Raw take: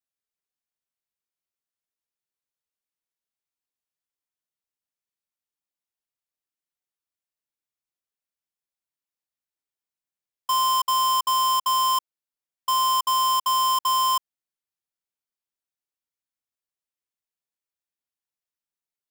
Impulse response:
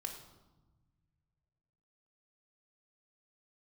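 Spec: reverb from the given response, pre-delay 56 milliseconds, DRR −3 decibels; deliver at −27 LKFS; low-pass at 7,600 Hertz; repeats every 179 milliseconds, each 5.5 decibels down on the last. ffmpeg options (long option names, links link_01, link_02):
-filter_complex "[0:a]lowpass=7600,aecho=1:1:179|358|537|716|895|1074|1253:0.531|0.281|0.149|0.079|0.0419|0.0222|0.0118,asplit=2[link_01][link_02];[1:a]atrim=start_sample=2205,adelay=56[link_03];[link_02][link_03]afir=irnorm=-1:irlink=0,volume=4.5dB[link_04];[link_01][link_04]amix=inputs=2:normalize=0,volume=-11dB"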